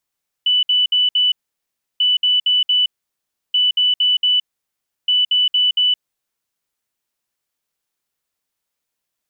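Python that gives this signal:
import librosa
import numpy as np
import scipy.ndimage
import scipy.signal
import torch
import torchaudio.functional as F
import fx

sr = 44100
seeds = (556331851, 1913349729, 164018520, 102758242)

y = fx.beep_pattern(sr, wave='sine', hz=2980.0, on_s=0.17, off_s=0.06, beeps=4, pause_s=0.68, groups=4, level_db=-12.0)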